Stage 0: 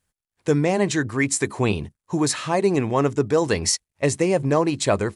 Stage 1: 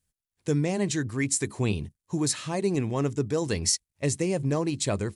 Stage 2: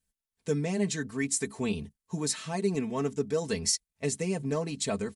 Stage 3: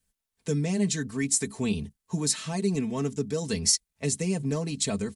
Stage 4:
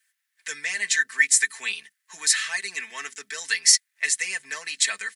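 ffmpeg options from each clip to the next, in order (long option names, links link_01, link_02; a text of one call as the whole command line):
ffmpeg -i in.wav -af "equalizer=frequency=990:width=0.39:gain=-10,volume=-1.5dB" out.wav
ffmpeg -i in.wav -af "aecho=1:1:4.5:0.79,volume=-5dB" out.wav
ffmpeg -i in.wav -filter_complex "[0:a]acrossover=split=280|3000[link_01][link_02][link_03];[link_02]acompressor=threshold=-50dB:ratio=1.5[link_04];[link_01][link_04][link_03]amix=inputs=3:normalize=0,volume=5dB" out.wav
ffmpeg -i in.wav -af "highpass=frequency=1800:width_type=q:width=5.7,volume=6dB" out.wav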